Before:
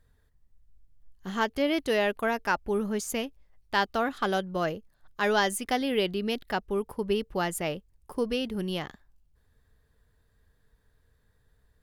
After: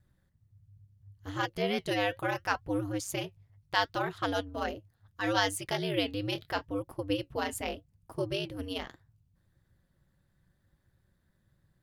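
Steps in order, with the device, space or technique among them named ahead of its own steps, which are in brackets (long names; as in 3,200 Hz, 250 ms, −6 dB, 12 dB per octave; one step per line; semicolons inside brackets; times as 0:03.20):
alien voice (ring modulation 100 Hz; flanger 0.73 Hz, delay 2.1 ms, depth 5.2 ms, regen −71%)
dynamic equaliser 4,100 Hz, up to +4 dB, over −50 dBFS, Q 0.97
0:06.30–0:06.79: double-tracking delay 27 ms −11 dB
level +2.5 dB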